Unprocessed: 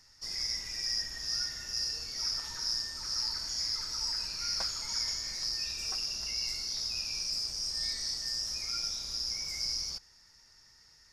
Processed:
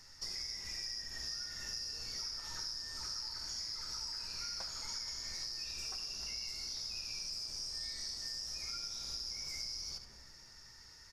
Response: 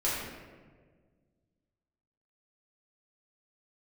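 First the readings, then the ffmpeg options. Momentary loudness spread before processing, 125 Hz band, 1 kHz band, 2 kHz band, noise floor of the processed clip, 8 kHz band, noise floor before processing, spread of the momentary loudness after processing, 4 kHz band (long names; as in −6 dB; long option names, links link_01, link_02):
2 LU, −4.5 dB, −5.0 dB, −6.0 dB, −57 dBFS, −7.0 dB, −61 dBFS, 3 LU, −7.5 dB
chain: -filter_complex "[0:a]aecho=1:1:72:0.237,asplit=2[link_01][link_02];[1:a]atrim=start_sample=2205,lowpass=2100[link_03];[link_02][link_03]afir=irnorm=-1:irlink=0,volume=-16.5dB[link_04];[link_01][link_04]amix=inputs=2:normalize=0,acompressor=threshold=-42dB:ratio=10,volume=3dB"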